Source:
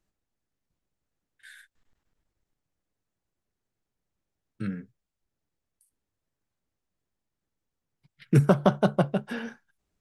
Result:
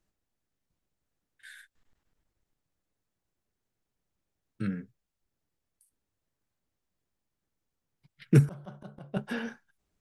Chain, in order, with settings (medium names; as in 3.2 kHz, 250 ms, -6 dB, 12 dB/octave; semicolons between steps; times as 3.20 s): 8.42–9.17 s: slow attack 401 ms